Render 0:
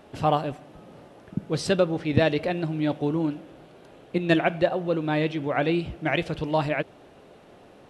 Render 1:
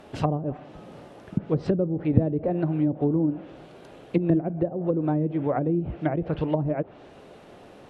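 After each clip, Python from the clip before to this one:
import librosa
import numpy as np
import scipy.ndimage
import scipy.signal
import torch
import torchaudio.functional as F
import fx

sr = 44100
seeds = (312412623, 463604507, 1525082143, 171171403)

y = fx.env_lowpass_down(x, sr, base_hz=320.0, full_db=-20.0)
y = F.gain(torch.from_numpy(y), 3.0).numpy()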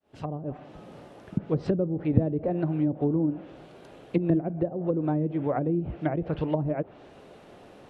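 y = fx.fade_in_head(x, sr, length_s=0.63)
y = F.gain(torch.from_numpy(y), -2.0).numpy()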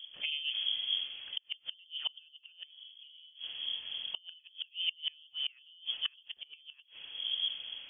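y = fx.dmg_wind(x, sr, seeds[0], corner_hz=120.0, level_db=-34.0)
y = fx.gate_flip(y, sr, shuts_db=-19.0, range_db=-30)
y = fx.freq_invert(y, sr, carrier_hz=3300)
y = F.gain(torch.from_numpy(y), -3.0).numpy()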